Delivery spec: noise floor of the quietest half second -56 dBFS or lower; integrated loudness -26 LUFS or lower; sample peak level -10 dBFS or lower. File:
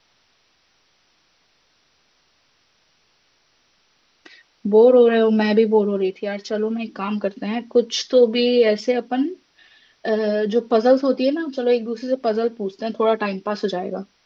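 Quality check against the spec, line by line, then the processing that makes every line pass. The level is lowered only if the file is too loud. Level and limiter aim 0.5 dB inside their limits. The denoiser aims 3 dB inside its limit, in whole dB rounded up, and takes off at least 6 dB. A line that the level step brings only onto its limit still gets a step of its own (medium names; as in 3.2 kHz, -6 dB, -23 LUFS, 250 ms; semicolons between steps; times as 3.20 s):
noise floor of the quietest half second -63 dBFS: pass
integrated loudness -19.5 LUFS: fail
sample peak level -3.5 dBFS: fail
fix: trim -7 dB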